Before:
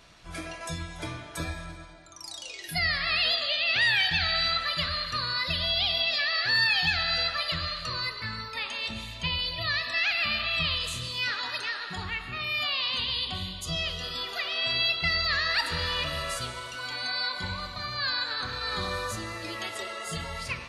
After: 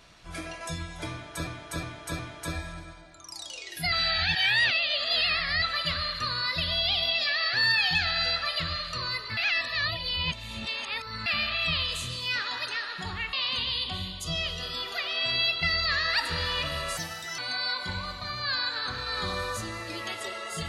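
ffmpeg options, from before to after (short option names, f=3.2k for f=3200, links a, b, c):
-filter_complex "[0:a]asplit=11[a][b][c][d][e][f][g][h][i][j][k];[a]atrim=end=1.472[l];[b]atrim=start=1.108:end=1.472[m];[c]atrim=start=1.108:end=1.472[n];[d]atrim=start=1.108:end=2.842[o];[e]atrim=start=2.838:end=4.542,asetpts=PTS-STARTPTS,areverse[p];[f]atrim=start=4.538:end=8.292[q];[g]atrim=start=8.288:end=10.182,asetpts=PTS-STARTPTS,areverse[r];[h]atrim=start=10.178:end=12.252[s];[i]atrim=start=12.738:end=16.384[t];[j]atrim=start=16.38:end=16.93,asetpts=PTS-STARTPTS,asetrate=58653,aresample=44100[u];[k]atrim=start=16.926[v];[l][m]acrossfade=d=0.004:c1=hsin:c2=hsin[w];[w][n]acrossfade=d=0.004:c1=hsin:c2=hsin[x];[x][o]acrossfade=d=0.004:c1=hsin:c2=hsin[y];[y][p]acrossfade=d=0.004:c1=hsin:c2=hsin[z];[z][q]acrossfade=d=0.004:c1=hsin:c2=hsin[aa];[aa][r]acrossfade=d=0.004:c1=hsin:c2=hsin[ab];[ab][s]acrossfade=d=0.004:c1=hsin:c2=hsin[ac];[ac][t]acrossfade=d=0.004:c1=hsin:c2=hsin[ad];[ad][u]acrossfade=d=0.004:c1=hsin:c2=hsin[ae];[ae][v]acrossfade=d=0.004:c1=hsin:c2=hsin"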